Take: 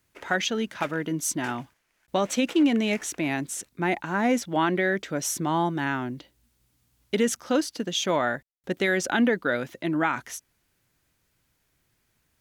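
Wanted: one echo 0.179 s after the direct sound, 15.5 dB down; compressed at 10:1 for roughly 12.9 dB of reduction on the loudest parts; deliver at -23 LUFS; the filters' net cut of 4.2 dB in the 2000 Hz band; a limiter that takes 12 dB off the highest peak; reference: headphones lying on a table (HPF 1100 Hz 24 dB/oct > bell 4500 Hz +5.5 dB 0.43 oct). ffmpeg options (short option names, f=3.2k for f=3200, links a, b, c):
-af "equalizer=f=2k:t=o:g=-5.5,acompressor=threshold=-31dB:ratio=10,alimiter=level_in=5.5dB:limit=-24dB:level=0:latency=1,volume=-5.5dB,highpass=f=1.1k:w=0.5412,highpass=f=1.1k:w=1.3066,equalizer=f=4.5k:t=o:w=0.43:g=5.5,aecho=1:1:179:0.168,volume=20dB"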